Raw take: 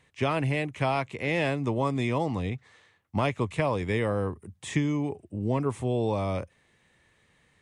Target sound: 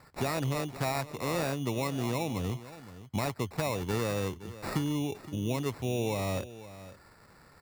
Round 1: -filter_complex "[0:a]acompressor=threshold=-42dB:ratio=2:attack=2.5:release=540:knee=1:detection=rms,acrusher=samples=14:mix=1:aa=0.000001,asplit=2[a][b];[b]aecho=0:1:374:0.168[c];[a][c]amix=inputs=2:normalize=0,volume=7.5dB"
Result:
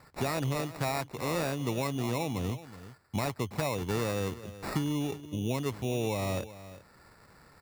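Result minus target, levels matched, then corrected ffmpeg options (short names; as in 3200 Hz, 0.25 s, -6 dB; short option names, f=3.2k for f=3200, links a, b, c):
echo 0.143 s early
-filter_complex "[0:a]acompressor=threshold=-42dB:ratio=2:attack=2.5:release=540:knee=1:detection=rms,acrusher=samples=14:mix=1:aa=0.000001,asplit=2[a][b];[b]aecho=0:1:517:0.168[c];[a][c]amix=inputs=2:normalize=0,volume=7.5dB"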